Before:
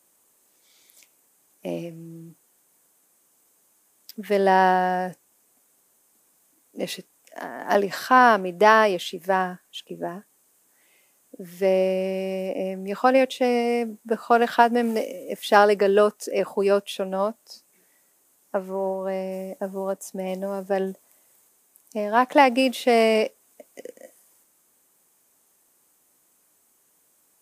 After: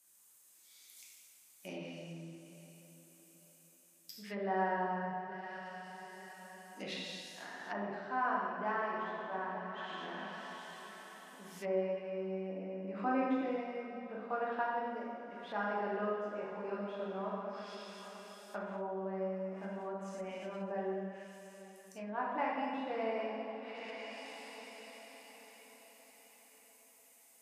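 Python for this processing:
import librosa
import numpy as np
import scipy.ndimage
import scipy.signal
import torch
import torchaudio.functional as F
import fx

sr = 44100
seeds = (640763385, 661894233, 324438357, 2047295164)

p1 = x + fx.echo_diffused(x, sr, ms=831, feedback_pct=43, wet_db=-15, dry=0)
p2 = fx.rev_plate(p1, sr, seeds[0], rt60_s=2.1, hf_ratio=0.85, predelay_ms=0, drr_db=-5.5)
p3 = fx.env_lowpass_down(p2, sr, base_hz=1200.0, full_db=-17.0)
p4 = fx.tone_stack(p3, sr, knobs='5-5-5')
p5 = fx.rider(p4, sr, range_db=5, speed_s=2.0)
p6 = fx.peak_eq(p5, sr, hz=300.0, db=11.5, octaves=0.6, at=(12.84, 13.56))
y = F.gain(torch.from_numpy(p6), -5.0).numpy()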